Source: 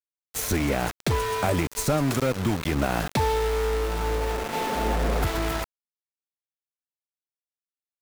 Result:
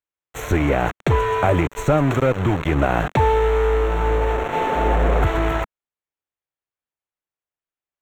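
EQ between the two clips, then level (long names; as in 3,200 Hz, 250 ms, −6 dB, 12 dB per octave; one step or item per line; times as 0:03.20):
moving average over 9 samples
parametric band 220 Hz −9 dB 0.42 octaves
+7.5 dB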